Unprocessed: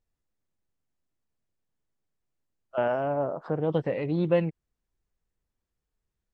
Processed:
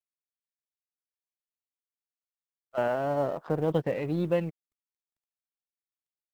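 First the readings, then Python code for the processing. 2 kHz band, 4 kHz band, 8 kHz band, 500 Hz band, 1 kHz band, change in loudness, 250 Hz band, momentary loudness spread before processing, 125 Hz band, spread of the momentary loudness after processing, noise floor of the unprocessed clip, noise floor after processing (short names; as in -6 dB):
-1.0 dB, -0.5 dB, n/a, -1.5 dB, -0.5 dB, -1.5 dB, -1.5 dB, 6 LU, -1.5 dB, 3 LU, -85 dBFS, under -85 dBFS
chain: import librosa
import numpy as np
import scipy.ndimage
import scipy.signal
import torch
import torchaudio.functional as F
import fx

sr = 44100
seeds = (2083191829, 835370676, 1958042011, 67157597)

y = fx.law_mismatch(x, sr, coded='A')
y = fx.rider(y, sr, range_db=10, speed_s=0.5)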